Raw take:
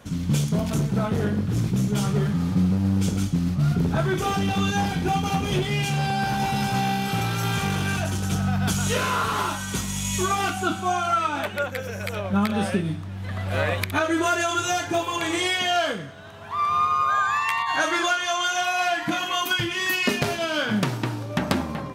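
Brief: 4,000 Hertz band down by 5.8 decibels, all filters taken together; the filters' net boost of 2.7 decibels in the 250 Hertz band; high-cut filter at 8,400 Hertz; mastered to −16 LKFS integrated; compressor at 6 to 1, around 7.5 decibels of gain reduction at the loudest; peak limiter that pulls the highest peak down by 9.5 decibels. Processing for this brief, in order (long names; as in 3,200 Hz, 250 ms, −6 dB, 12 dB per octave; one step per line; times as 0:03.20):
low-pass filter 8,400 Hz
parametric band 250 Hz +4 dB
parametric band 4,000 Hz −8 dB
downward compressor 6 to 1, threshold −24 dBFS
level +14 dB
brickwall limiter −7.5 dBFS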